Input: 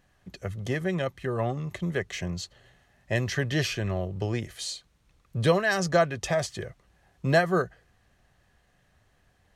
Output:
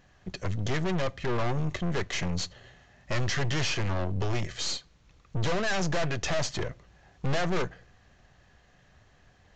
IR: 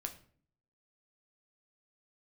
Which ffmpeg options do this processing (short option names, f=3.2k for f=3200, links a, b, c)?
-filter_complex "[0:a]aeval=exprs='(tanh(70.8*val(0)+0.75)-tanh(0.75))/70.8':c=same,asplit=2[a][b];[1:a]atrim=start_sample=2205[c];[b][c]afir=irnorm=-1:irlink=0,volume=-12.5dB[d];[a][d]amix=inputs=2:normalize=0,aresample=16000,aresample=44100,volume=8.5dB"